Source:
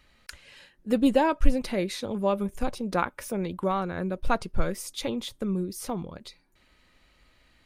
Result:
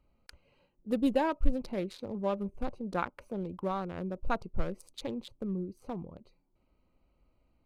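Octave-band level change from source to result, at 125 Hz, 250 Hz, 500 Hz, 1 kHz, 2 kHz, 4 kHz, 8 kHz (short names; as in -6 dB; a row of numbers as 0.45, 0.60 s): -6.0, -6.0, -6.5, -6.5, -8.0, -10.5, -17.5 dB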